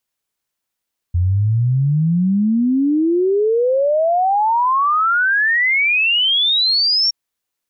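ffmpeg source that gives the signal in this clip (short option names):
-f lavfi -i "aevalsrc='0.237*clip(min(t,5.97-t)/0.01,0,1)*sin(2*PI*85*5.97/log(5600/85)*(exp(log(5600/85)*t/5.97)-1))':d=5.97:s=44100"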